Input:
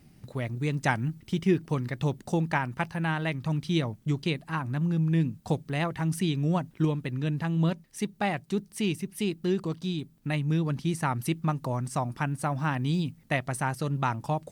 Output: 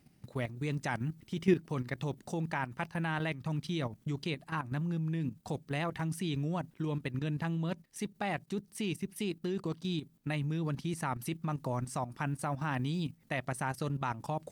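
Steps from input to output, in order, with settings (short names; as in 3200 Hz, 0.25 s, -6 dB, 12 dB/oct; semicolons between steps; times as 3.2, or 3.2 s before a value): low shelf 98 Hz -7 dB; level quantiser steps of 11 dB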